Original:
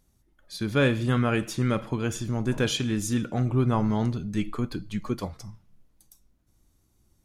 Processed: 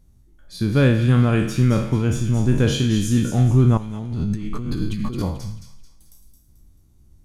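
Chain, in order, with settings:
peak hold with a decay on every bin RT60 0.57 s
low-shelf EQ 150 Hz +3.5 dB
0:03.77–0:05.22: compressor whose output falls as the input rises −32 dBFS, ratio −1
low-shelf EQ 340 Hz +10.5 dB
delay with a high-pass on its return 219 ms, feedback 40%, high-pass 2,300 Hz, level −6 dB
level −1.5 dB

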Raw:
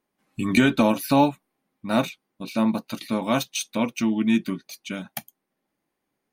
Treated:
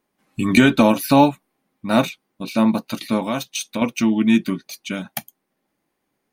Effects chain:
0:03.20–0:03.82: downward compressor 2 to 1, threshold −30 dBFS, peak gain reduction 7.5 dB
level +5 dB

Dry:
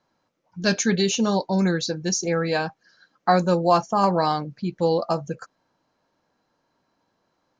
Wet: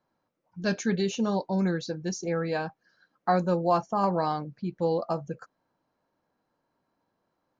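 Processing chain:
high-shelf EQ 2,800 Hz −9.5 dB
level −5 dB

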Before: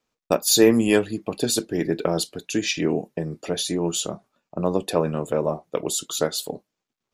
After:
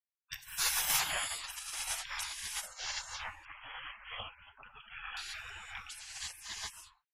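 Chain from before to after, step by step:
low-pass that shuts in the quiet parts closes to 690 Hz, open at −17 dBFS
reverb whose tail is shaped and stops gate 450 ms rising, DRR −3 dB
gate on every frequency bin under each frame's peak −30 dB weak
0:03.45–0:05.17: linear-phase brick-wall low-pass 3,400 Hz

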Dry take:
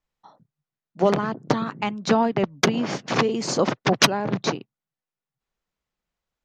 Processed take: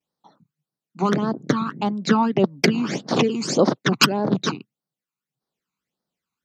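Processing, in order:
pitch vibrato 0.35 Hz 22 cents
Chebyshev high-pass filter 190 Hz, order 2
all-pass phaser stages 12, 1.7 Hz, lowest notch 540–2,600 Hz
level +5 dB

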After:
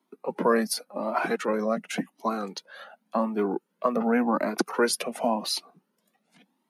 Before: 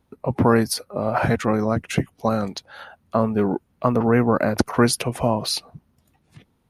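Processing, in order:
Butterworth high-pass 180 Hz 72 dB per octave
flanger whose copies keep moving one way rising 0.9 Hz

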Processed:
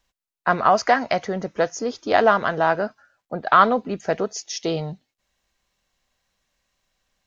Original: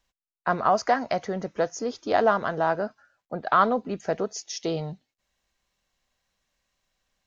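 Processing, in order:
dynamic equaliser 2,500 Hz, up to +6 dB, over −39 dBFS, Q 0.84
level +3.5 dB

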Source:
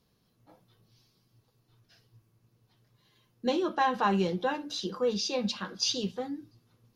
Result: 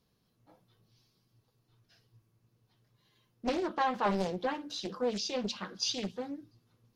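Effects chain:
highs frequency-modulated by the lows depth 0.85 ms
level −3.5 dB

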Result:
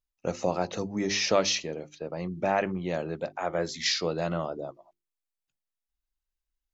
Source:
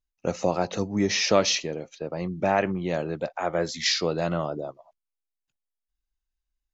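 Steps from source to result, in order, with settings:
mains-hum notches 50/100/150/200/250/300/350/400 Hz
level −3 dB

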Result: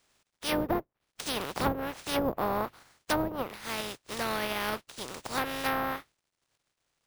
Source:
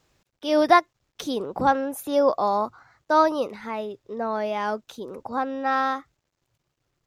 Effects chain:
compressing power law on the bin magnitudes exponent 0.29
treble cut that deepens with the level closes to 500 Hz, closed at −16 dBFS
bad sample-rate conversion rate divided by 3×, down none, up hold
level −3 dB

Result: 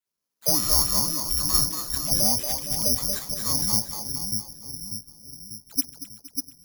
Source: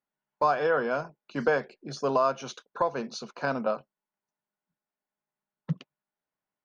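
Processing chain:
brickwall limiter −16.5 dBFS, peak gain reduction 3 dB
all-pass dispersion lows, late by 81 ms, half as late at 1,100 Hz
frequency shifter −430 Hz
on a send: echo with a time of its own for lows and highs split 360 Hz, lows 593 ms, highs 232 ms, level −5 dB
on the sum: asymmetric clip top −20.5 dBFS
bad sample-rate conversion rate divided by 8×, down none, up zero stuff
level −4 dB

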